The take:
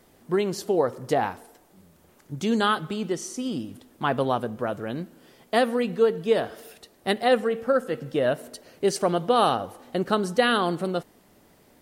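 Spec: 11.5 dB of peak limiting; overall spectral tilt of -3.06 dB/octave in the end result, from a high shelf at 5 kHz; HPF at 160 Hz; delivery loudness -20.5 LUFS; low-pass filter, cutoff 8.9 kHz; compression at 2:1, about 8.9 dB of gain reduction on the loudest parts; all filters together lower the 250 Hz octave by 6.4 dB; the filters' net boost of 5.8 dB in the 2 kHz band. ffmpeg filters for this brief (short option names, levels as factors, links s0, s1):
-af "highpass=160,lowpass=8900,equalizer=f=250:t=o:g=-7.5,equalizer=f=2000:t=o:g=6.5,highshelf=f=5000:g=8,acompressor=threshold=0.0282:ratio=2,volume=5.62,alimiter=limit=0.376:level=0:latency=1"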